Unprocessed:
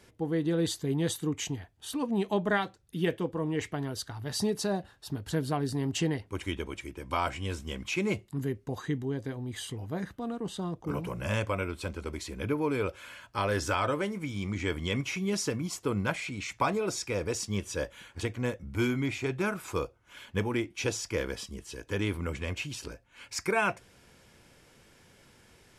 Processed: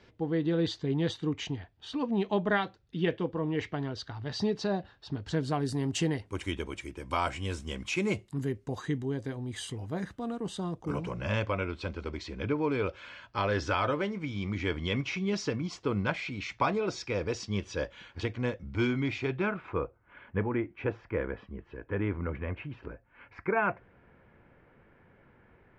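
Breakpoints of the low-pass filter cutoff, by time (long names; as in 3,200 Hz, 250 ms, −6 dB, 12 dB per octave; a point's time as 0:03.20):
low-pass filter 24 dB per octave
0:05.10 4,800 Hz
0:05.70 10,000 Hz
0:10.86 10,000 Hz
0:11.26 5,100 Hz
0:19.18 5,100 Hz
0:19.82 2,000 Hz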